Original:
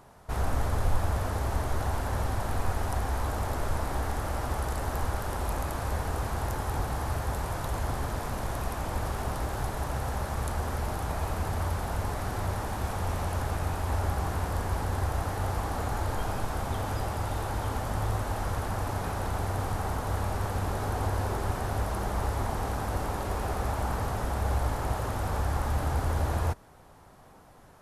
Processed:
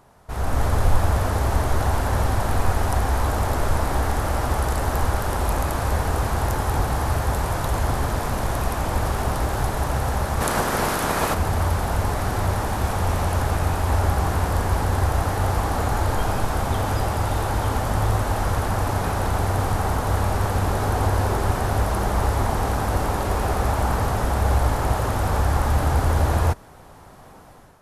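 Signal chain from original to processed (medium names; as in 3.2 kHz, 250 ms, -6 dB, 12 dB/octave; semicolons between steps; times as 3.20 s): 10.40–11.33 s: spectral peaks clipped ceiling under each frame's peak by 18 dB; level rider gain up to 8.5 dB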